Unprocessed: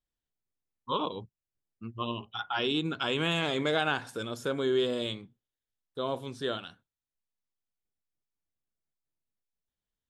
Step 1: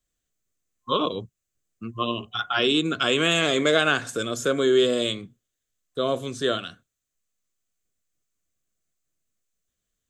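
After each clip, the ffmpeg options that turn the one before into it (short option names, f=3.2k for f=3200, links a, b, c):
-filter_complex "[0:a]superequalizer=9b=0.316:15b=2.51,acrossover=split=210[a][b];[a]alimiter=level_in=19.5dB:limit=-24dB:level=0:latency=1,volume=-19.5dB[c];[c][b]amix=inputs=2:normalize=0,volume=8.5dB"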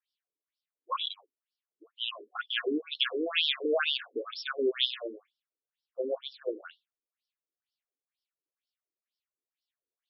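-af "crystalizer=i=3.5:c=0,afftfilt=real='re*between(b*sr/1024,350*pow(4100/350,0.5+0.5*sin(2*PI*2.1*pts/sr))/1.41,350*pow(4100/350,0.5+0.5*sin(2*PI*2.1*pts/sr))*1.41)':imag='im*between(b*sr/1024,350*pow(4100/350,0.5+0.5*sin(2*PI*2.1*pts/sr))/1.41,350*pow(4100/350,0.5+0.5*sin(2*PI*2.1*pts/sr))*1.41)':win_size=1024:overlap=0.75,volume=-5dB"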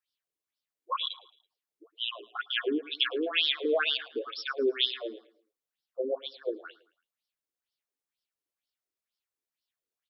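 -af "aecho=1:1:110|220|330:0.0841|0.037|0.0163,volume=1dB"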